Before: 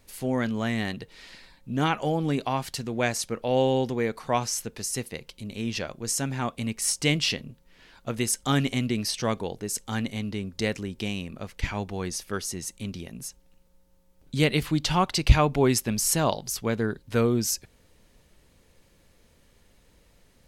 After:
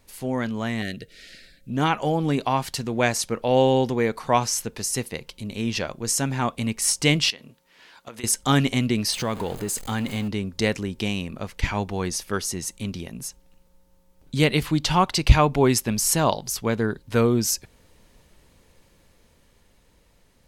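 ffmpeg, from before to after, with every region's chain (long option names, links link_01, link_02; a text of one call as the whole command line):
ffmpeg -i in.wav -filter_complex "[0:a]asettb=1/sr,asplit=3[link_01][link_02][link_03];[link_01]atrim=end=0.824[link_04];[link_02]atrim=start=0.82:end=1.7,asetpts=PTS-STARTPTS,afade=type=in:duration=0.004:curve=qsin,afade=type=out:start_time=0.876:duration=0.004:curve=qsin,asuperstop=centerf=970:order=8:qfactor=1.4,highshelf=frequency=5700:gain=4[link_05];[link_03]atrim=start=1.696[link_06];[link_04][link_05]acrossfade=duration=0.004:curve1=hsin:curve2=qsin[link_07];[link_07][link_06]acrossfade=duration=0.004:curve1=qsin:curve2=hsin,asettb=1/sr,asplit=3[link_08][link_09][link_10];[link_08]atrim=end=7.304[link_11];[link_09]atrim=start=7.3:end=8.24,asetpts=PTS-STARTPTS,afade=type=in:duration=0.004:curve=qsin,afade=type=out:start_time=0.936:duration=0.004:curve=qsin,highpass=frequency=530:poles=1,acompressor=threshold=-39dB:ratio=6:attack=3.2:release=140:knee=1:detection=peak[link_12];[link_10]atrim=start=8.236[link_13];[link_11][link_12]acrossfade=duration=0.004:curve1=hsin:curve2=qsin[link_14];[link_14][link_13]acrossfade=duration=0.004:curve1=qsin:curve2=hsin,asettb=1/sr,asplit=3[link_15][link_16][link_17];[link_15]atrim=end=9.124[link_18];[link_16]atrim=start=9.12:end=10.28,asetpts=PTS-STARTPTS,afade=type=in:duration=0.004:curve=qsin,afade=type=out:start_time=1.156:duration=0.004:curve=qsin,aeval=exprs='val(0)+0.5*0.0141*sgn(val(0))':channel_layout=same,bandreject=frequency=5600:width=5.9,acompressor=threshold=-28dB:ratio=2.5:attack=3.2:release=140:knee=1:detection=peak[link_19];[link_17]atrim=start=10.276[link_20];[link_18][link_19]acrossfade=duration=0.004:curve1=hsin:curve2=qsin[link_21];[link_21][link_20]acrossfade=duration=0.004:curve1=qsin:curve2=hsin,equalizer=frequency=960:width_type=o:width=0.47:gain=3,dynaudnorm=framelen=230:gausssize=17:maxgain=4.5dB" out.wav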